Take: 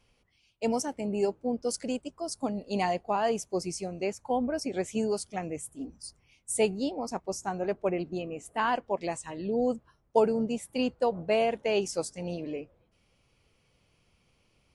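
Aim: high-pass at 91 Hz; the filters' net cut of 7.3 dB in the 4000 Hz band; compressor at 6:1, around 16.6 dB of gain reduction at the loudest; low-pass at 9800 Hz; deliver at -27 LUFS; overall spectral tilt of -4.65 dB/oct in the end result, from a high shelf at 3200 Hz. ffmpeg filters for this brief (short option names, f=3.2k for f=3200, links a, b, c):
-af "highpass=91,lowpass=9.8k,highshelf=f=3.2k:g=-4,equalizer=f=4k:t=o:g=-8,acompressor=threshold=-37dB:ratio=6,volume=14.5dB"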